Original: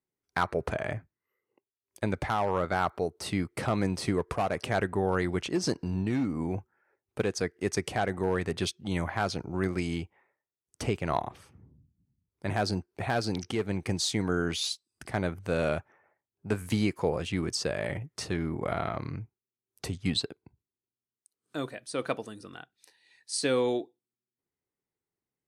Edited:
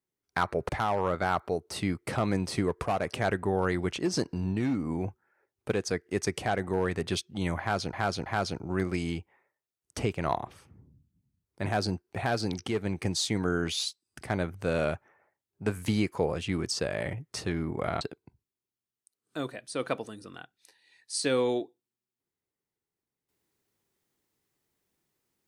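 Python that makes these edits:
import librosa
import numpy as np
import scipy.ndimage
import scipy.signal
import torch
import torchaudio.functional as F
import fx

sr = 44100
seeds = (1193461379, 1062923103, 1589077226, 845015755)

y = fx.edit(x, sr, fx.cut(start_s=0.69, length_s=1.5),
    fx.repeat(start_s=9.1, length_s=0.33, count=3),
    fx.cut(start_s=18.85, length_s=1.35), tone=tone)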